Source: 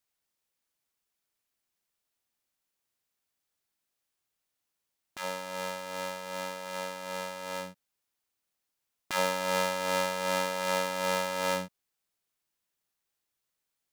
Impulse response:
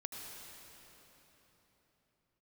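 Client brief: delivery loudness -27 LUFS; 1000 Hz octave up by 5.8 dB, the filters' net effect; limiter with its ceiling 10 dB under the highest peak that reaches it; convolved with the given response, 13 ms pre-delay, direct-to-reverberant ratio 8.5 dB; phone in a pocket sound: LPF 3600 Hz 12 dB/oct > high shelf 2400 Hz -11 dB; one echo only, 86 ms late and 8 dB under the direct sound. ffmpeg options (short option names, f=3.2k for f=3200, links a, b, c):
-filter_complex "[0:a]equalizer=f=1k:t=o:g=8.5,alimiter=limit=-19dB:level=0:latency=1,aecho=1:1:86:0.398,asplit=2[a][b];[1:a]atrim=start_sample=2205,adelay=13[c];[b][c]afir=irnorm=-1:irlink=0,volume=-7.5dB[d];[a][d]amix=inputs=2:normalize=0,lowpass=3.6k,highshelf=f=2.4k:g=-11,volume=7.5dB"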